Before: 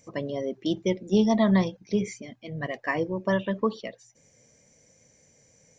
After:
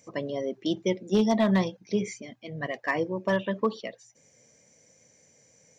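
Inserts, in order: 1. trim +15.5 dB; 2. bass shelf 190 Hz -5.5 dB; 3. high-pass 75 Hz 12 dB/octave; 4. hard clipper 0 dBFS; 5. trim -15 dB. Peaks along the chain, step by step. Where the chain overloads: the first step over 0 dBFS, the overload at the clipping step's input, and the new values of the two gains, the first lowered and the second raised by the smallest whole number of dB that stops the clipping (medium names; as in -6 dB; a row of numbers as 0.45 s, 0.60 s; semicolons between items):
+4.5 dBFS, +3.5 dBFS, +4.5 dBFS, 0.0 dBFS, -15.0 dBFS; step 1, 4.5 dB; step 1 +10.5 dB, step 5 -10 dB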